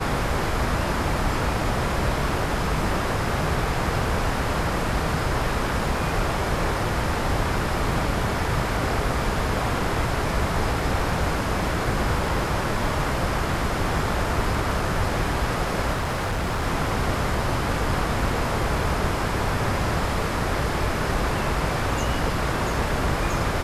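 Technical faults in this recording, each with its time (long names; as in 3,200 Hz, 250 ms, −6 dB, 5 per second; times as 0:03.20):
0:15.93–0:16.64: clipping −21.5 dBFS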